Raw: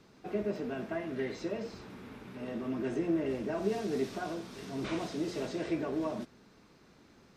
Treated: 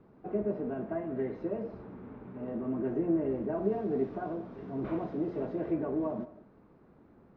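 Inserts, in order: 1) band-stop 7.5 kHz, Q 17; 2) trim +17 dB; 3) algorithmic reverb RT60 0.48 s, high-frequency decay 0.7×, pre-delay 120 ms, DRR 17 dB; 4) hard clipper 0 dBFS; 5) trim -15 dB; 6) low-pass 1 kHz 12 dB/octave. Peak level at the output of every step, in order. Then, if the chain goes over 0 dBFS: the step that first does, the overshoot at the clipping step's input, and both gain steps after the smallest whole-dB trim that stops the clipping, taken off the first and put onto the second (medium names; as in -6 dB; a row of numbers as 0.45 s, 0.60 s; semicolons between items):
-19.0 dBFS, -2.0 dBFS, -2.5 dBFS, -2.5 dBFS, -17.5 dBFS, -17.5 dBFS; nothing clips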